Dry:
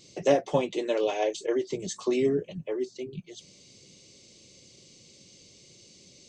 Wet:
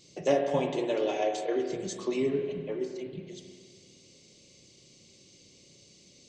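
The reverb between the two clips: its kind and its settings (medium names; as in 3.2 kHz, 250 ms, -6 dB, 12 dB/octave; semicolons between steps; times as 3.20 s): spring tank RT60 1.9 s, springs 31/50 ms, chirp 60 ms, DRR 3.5 dB; trim -3.5 dB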